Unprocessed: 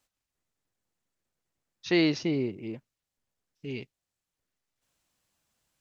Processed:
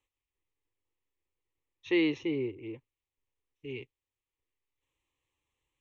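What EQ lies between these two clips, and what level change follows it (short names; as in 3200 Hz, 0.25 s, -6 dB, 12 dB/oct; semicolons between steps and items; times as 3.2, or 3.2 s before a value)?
LPF 5300 Hz; bell 1000 Hz -3.5 dB 2.2 oct; fixed phaser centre 990 Hz, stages 8; 0.0 dB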